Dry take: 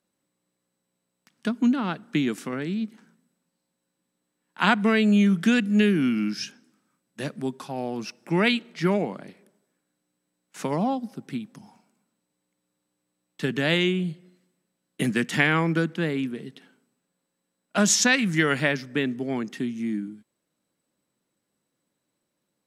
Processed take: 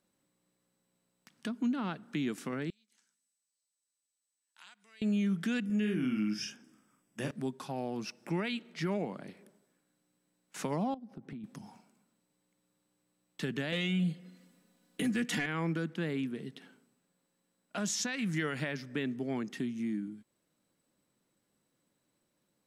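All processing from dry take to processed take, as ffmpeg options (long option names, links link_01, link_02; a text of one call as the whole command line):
ffmpeg -i in.wav -filter_complex "[0:a]asettb=1/sr,asplit=3[link_01][link_02][link_03];[link_01]atrim=end=2.704[link_04];[link_02]atrim=start=2.7:end=5.02,asetpts=PTS-STARTPTS,afade=type=in:duration=0.004:curve=qsin,afade=type=out:start_time=2.316:duration=0.004:curve=qsin,acompressor=threshold=-40dB:ratio=3:attack=3.2:release=140:knee=1:detection=peak,bandpass=frequency=7200:width_type=q:width=1.5[link_05];[link_03]atrim=start=5.016[link_06];[link_04][link_05]acrossfade=duration=0.004:curve1=hsin:curve2=qsin[link_07];[link_07][link_06]acrossfade=duration=0.004:curve1=qsin:curve2=hsin,asettb=1/sr,asplit=3[link_08][link_09][link_10];[link_08]atrim=end=5.654[link_11];[link_09]atrim=start=5.65:end=7.31,asetpts=PTS-STARTPTS,afade=type=in:duration=0.004:curve=qsin,afade=type=out:start_time=1.656:duration=0.004:curve=qsin,asuperstop=centerf=4100:order=4:qfactor=4.5,asplit=2[link_12][link_13];[link_13]adelay=47,volume=-5dB[link_14];[link_12][link_14]amix=inputs=2:normalize=0,atrim=end_sample=73206[link_15];[link_10]atrim=start=7.306[link_16];[link_11][link_15]acrossfade=duration=0.004:curve1=hsin:curve2=qsin[link_17];[link_17][link_16]acrossfade=duration=0.004:curve1=qsin:curve2=hsin,asettb=1/sr,asplit=3[link_18][link_19][link_20];[link_18]atrim=end=10.944[link_21];[link_19]atrim=start=10.94:end=11.44,asetpts=PTS-STARTPTS,afade=type=in:duration=0.004:curve=qsin,afade=type=out:start_time=0.496:duration=0.004:curve=qsin,lowpass=frequency=1100:poles=1,acompressor=threshold=-39dB:ratio=5:attack=3.2:release=140:knee=1:detection=peak[link_22];[link_20]atrim=start=11.436[link_23];[link_21][link_22]acrossfade=duration=0.004:curve1=hsin:curve2=qsin[link_24];[link_24][link_23]acrossfade=duration=0.004:curve1=qsin:curve2=hsin,asettb=1/sr,asplit=3[link_25][link_26][link_27];[link_25]atrim=end=13.724[link_28];[link_26]atrim=start=13.72:end=15.46,asetpts=PTS-STARTPTS,afade=type=in:duration=0.004:curve=qsin,afade=type=out:start_time=1.736:duration=0.004:curve=qsin,aecho=1:1:4.1:0.7,atrim=end_sample=76734,acontrast=66[link_29];[link_27]atrim=start=15.456[link_30];[link_28][link_29]acrossfade=duration=0.004:curve1=hsin:curve2=qsin[link_31];[link_31][link_30]acrossfade=duration=0.004:curve1=qsin:curve2=hsin,lowshelf=frequency=87:gain=6,acompressor=threshold=-45dB:ratio=1.5,alimiter=level_in=0.5dB:limit=-24dB:level=0:latency=1:release=65,volume=-0.5dB" out.wav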